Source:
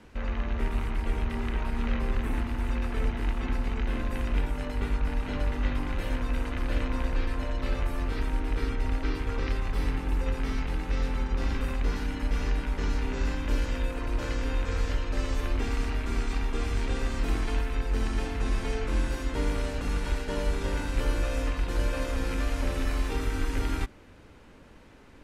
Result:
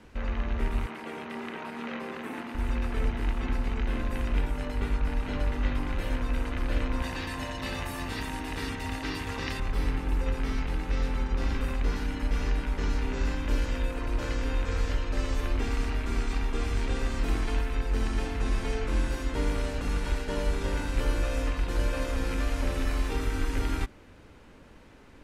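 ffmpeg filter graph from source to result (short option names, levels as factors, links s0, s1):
-filter_complex "[0:a]asettb=1/sr,asplit=3[s0][s1][s2];[s0]atrim=end=0.864[s3];[s1]atrim=start=0.86:end=2.55,asetpts=PTS-STARTPTS,afade=t=in:d=0.004:c=qsin,afade=t=out:st=1.686:d=0.004:c=qsin,highpass=f=150:w=0.5412,highpass=f=150:w=1.3066,bass=f=250:g=-6,treble=f=4000:g=-3[s4];[s2]atrim=start=2.546[s5];[s3][s4]acrossfade=d=0.004:c1=hsin:c2=qsin[s6];[s6][s5]acrossfade=d=0.004:c1=qsin:c2=hsin,asettb=1/sr,asplit=3[s7][s8][s9];[s7]atrim=end=7.024[s10];[s8]atrim=start=7.02:end=9.6,asetpts=PTS-STARTPTS,afade=t=in:d=0.004:c=qsin,afade=t=out:st=2.576:d=0.004:c=qsin,highpass=96,highshelf=f=2800:g=9,aecho=1:1:1.1:0.35,atrim=end_sample=113778[s11];[s9]atrim=start=9.596[s12];[s10][s11]acrossfade=d=0.004:c1=hsin:c2=qsin[s13];[s13][s12]acrossfade=d=0.004:c1=qsin:c2=hsin"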